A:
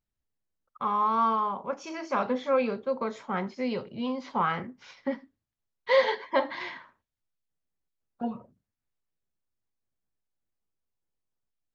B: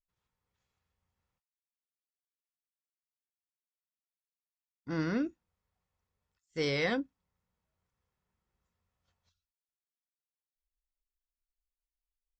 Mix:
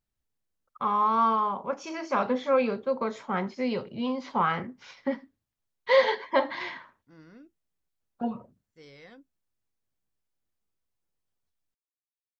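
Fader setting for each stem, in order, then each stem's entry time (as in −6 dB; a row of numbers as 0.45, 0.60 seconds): +1.5, −20.0 decibels; 0.00, 2.20 seconds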